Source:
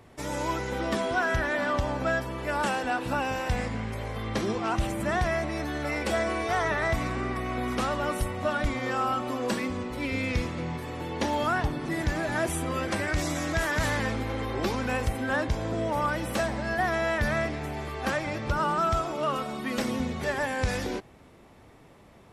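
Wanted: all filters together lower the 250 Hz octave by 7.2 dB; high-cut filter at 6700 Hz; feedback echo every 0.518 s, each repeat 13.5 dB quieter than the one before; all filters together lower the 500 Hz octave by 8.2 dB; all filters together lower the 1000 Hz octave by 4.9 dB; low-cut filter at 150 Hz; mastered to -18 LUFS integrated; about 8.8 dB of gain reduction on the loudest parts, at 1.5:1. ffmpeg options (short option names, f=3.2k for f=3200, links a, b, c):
-af "highpass=150,lowpass=6.7k,equalizer=f=250:t=o:g=-5.5,equalizer=f=500:t=o:g=-8.5,equalizer=f=1k:t=o:g=-3.5,acompressor=threshold=-52dB:ratio=1.5,aecho=1:1:518|1036:0.211|0.0444,volume=23dB"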